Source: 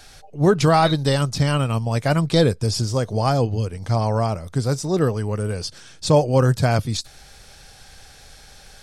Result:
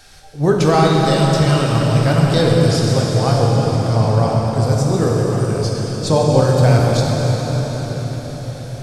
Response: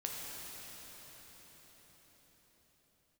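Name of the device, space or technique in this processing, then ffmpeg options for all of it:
cathedral: -filter_complex "[1:a]atrim=start_sample=2205[a];[0:a][a]afir=irnorm=-1:irlink=0,volume=2.5dB"

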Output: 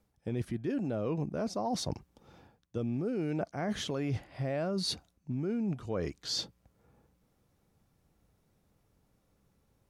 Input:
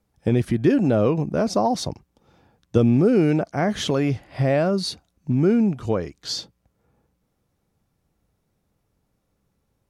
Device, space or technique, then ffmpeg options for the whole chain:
compression on the reversed sound: -af "areverse,acompressor=threshold=-31dB:ratio=8,areverse"

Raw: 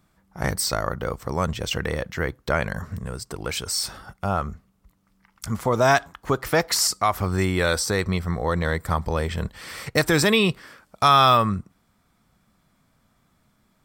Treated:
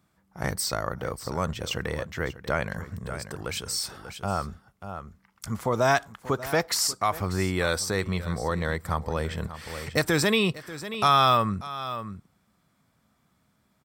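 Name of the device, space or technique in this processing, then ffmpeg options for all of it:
ducked delay: -filter_complex "[0:a]highpass=60,asplit=3[a][b][c];[b]adelay=589,volume=-8dB[d];[c]apad=whole_len=636409[e];[d][e]sidechaincompress=threshold=-28dB:ratio=4:attack=24:release=712[f];[a][f]amix=inputs=2:normalize=0,volume=-4dB"

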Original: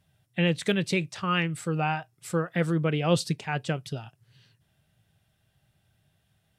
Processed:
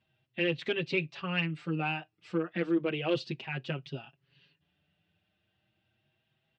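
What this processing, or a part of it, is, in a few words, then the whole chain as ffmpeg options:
barber-pole flanger into a guitar amplifier: -filter_complex "[0:a]asplit=2[a][b];[b]adelay=5.9,afreqshift=0.33[c];[a][c]amix=inputs=2:normalize=1,asoftclip=type=tanh:threshold=-19.5dB,highpass=93,equalizer=f=110:t=q:w=4:g=-8,equalizer=f=330:t=q:w=4:g=7,equalizer=f=2.7k:t=q:w=4:g=8,lowpass=f=4.4k:w=0.5412,lowpass=f=4.4k:w=1.3066,volume=-2.5dB"

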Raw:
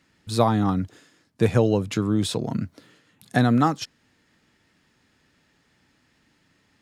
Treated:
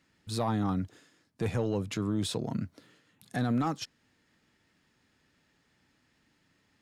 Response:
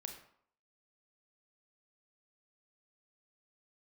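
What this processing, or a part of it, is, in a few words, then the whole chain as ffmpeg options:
soft clipper into limiter: -af "asoftclip=type=tanh:threshold=-10dB,alimiter=limit=-16dB:level=0:latency=1:release=18,volume=-6dB"

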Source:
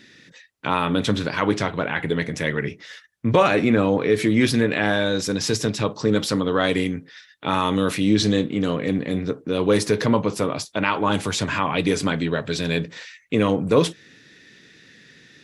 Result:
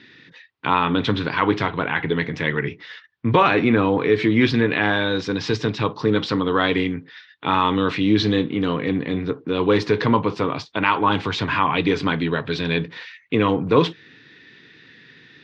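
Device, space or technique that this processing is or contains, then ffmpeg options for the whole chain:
guitar cabinet: -af "highpass=77,equalizer=f=200:t=q:w=4:g=-5,equalizer=f=590:t=q:w=4:g=-8,equalizer=f=1k:t=q:w=4:g=4,lowpass=f=4.1k:w=0.5412,lowpass=f=4.1k:w=1.3066,volume=2.5dB"

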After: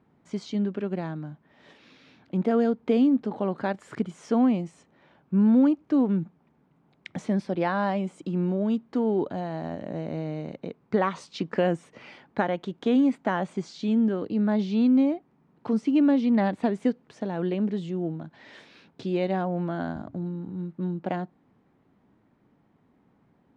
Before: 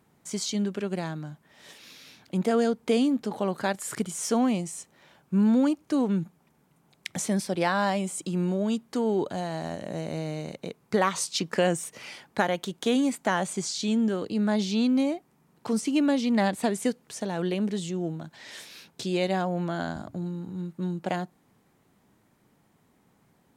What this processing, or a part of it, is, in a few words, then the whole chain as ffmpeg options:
phone in a pocket: -af "lowpass=3.8k,equalizer=f=270:t=o:w=0.58:g=4,highshelf=f=2.3k:g=-9"

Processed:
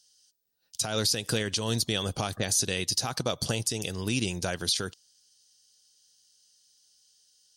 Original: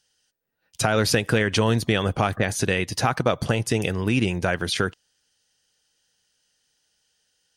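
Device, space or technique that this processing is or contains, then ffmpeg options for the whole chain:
over-bright horn tweeter: -af "highshelf=f=3.1k:t=q:w=1.5:g=13,alimiter=limit=-7dB:level=0:latency=1:release=184,volume=-7.5dB"

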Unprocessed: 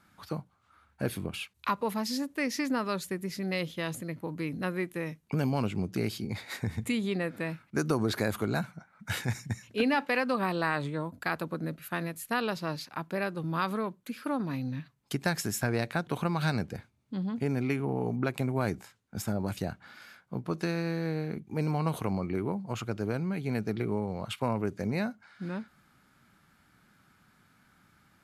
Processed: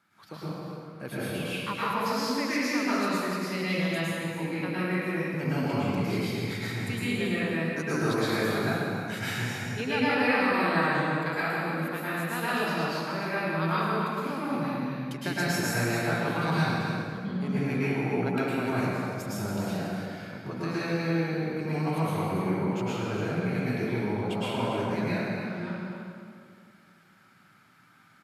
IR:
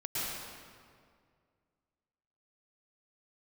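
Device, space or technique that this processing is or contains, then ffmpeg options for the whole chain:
stadium PA: -filter_complex "[0:a]highpass=130,equalizer=f=2.2k:t=o:w=2.4:g=4,aecho=1:1:186.6|279.9:0.251|0.355[a];[1:a]atrim=start_sample=2205[b];[a][b]afir=irnorm=-1:irlink=0,volume=-4dB"

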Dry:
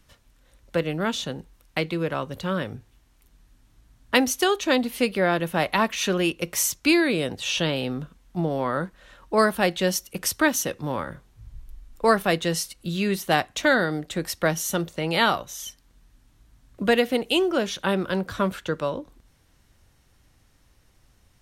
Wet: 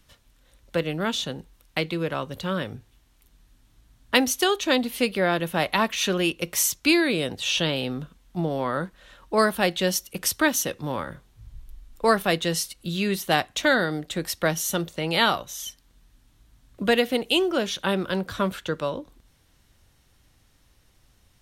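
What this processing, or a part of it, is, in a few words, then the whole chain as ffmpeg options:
presence and air boost: -af "equalizer=f=3.5k:t=o:w=0.77:g=3.5,highshelf=f=9.4k:g=4,volume=-1dB"

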